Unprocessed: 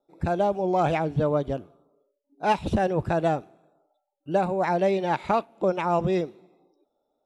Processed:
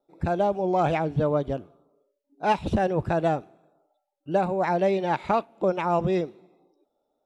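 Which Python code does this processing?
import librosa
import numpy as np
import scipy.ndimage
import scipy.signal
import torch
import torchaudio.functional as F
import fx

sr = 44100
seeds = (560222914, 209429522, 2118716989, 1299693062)

y = fx.high_shelf(x, sr, hz=7000.0, db=-5.0)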